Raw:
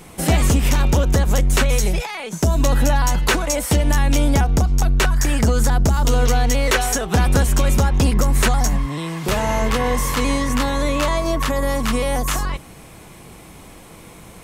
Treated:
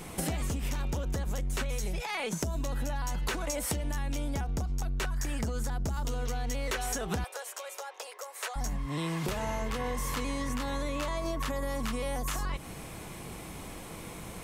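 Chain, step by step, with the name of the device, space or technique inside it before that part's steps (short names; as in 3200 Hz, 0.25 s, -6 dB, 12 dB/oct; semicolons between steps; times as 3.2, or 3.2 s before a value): serial compression, peaks first (compressor, threshold -25 dBFS, peak gain reduction 12.5 dB; compressor 2.5:1, threshold -29 dBFS, peak gain reduction 5 dB); 7.24–8.56 steep high-pass 470 Hz 48 dB/oct; gain -1.5 dB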